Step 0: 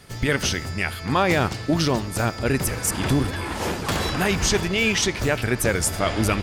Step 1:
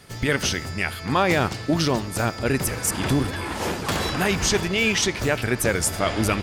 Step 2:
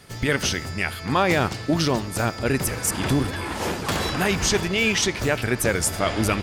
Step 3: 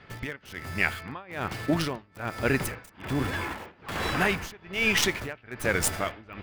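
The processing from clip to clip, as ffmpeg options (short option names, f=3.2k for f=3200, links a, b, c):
-af "lowshelf=f=71:g=-5.5"
-af anull
-filter_complex "[0:a]tremolo=f=1.2:d=0.96,acrossover=split=2500[a][b];[a]crystalizer=i=7:c=0[c];[b]acrusher=bits=4:dc=4:mix=0:aa=0.000001[d];[c][d]amix=inputs=2:normalize=0,volume=-3.5dB"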